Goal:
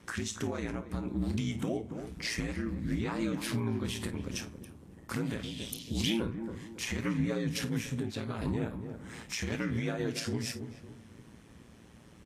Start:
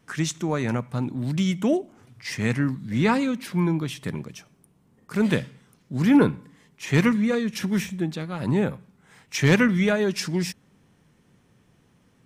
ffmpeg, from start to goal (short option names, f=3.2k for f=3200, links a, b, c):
-filter_complex "[0:a]acompressor=threshold=-34dB:ratio=6,aeval=exprs='val(0)*sin(2*PI*57*n/s)':c=same,asplit=2[a][b];[b]adelay=278,lowpass=f=970:p=1,volume=-10.5dB,asplit=2[c][d];[d]adelay=278,lowpass=f=970:p=1,volume=0.4,asplit=2[e][f];[f]adelay=278,lowpass=f=970:p=1,volume=0.4,asplit=2[g][h];[h]adelay=278,lowpass=f=970:p=1,volume=0.4[i];[c][e][g][i]amix=inputs=4:normalize=0[j];[a][j]amix=inputs=2:normalize=0,alimiter=level_in=7dB:limit=-24dB:level=0:latency=1:release=177,volume=-7dB,asettb=1/sr,asplit=3[k][l][m];[k]atrim=end=5.434[n];[l]atrim=start=5.43:end=6.2,asetpts=PTS-STARTPTS,afade=t=in:d=0.004:c=qsin,afade=t=out:st=0.766:d=0.004:c=qsin,highshelf=f=2.2k:t=q:w=3:g=13.5[o];[m]atrim=start=6.196[p];[n][o]acrossfade=d=0.004:c1=hsin:c2=qsin[q];[q][p]acrossfade=d=0.004:c1=qsin:c2=hsin,asplit=2[r][s];[s]aecho=0:1:27|53:0.224|0.188[t];[r][t]amix=inputs=2:normalize=0,volume=8dB" -ar 48000 -c:a libvorbis -b:a 32k